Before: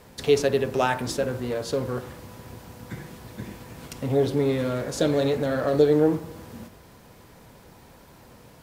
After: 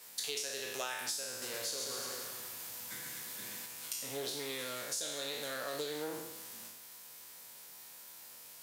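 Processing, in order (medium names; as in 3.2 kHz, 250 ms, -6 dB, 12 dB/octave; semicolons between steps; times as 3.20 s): spectral sustain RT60 0.84 s; high-pass 77 Hz; differentiator; 1.29–3.66 s: bouncing-ball echo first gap 130 ms, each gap 0.9×, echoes 5; compression 6:1, threshold -40 dBFS, peak gain reduction 11 dB; bass shelf 120 Hz +6.5 dB; loudspeaker Doppler distortion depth 0.12 ms; trim +5 dB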